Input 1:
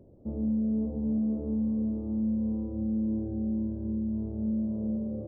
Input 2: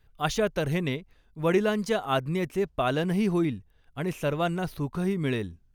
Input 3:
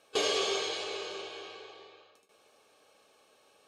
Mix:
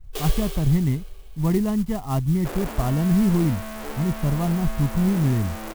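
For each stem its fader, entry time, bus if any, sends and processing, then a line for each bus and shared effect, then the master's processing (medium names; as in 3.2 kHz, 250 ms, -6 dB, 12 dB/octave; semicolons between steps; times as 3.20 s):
+0.5 dB, 2.45 s, no send, one-bit comparator; tone controls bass -14 dB, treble -3 dB
-5.5 dB, 0.00 s, no send, tilt EQ -4.5 dB/octave; comb 1 ms, depth 66%
-2.0 dB, 0.00 s, no send, expander -58 dBFS; peaking EQ 7.1 kHz +8 dB 1.4 oct; auto duck -15 dB, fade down 1.15 s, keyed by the second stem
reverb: none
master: sampling jitter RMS 0.047 ms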